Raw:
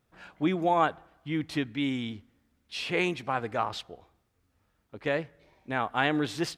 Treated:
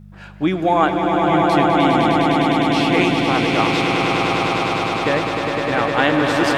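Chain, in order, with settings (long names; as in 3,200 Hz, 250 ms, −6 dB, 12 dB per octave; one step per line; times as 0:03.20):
echo that builds up and dies away 102 ms, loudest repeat 8, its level −5.5 dB
hum with harmonics 50 Hz, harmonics 4, −49 dBFS −1 dB per octave
level +8 dB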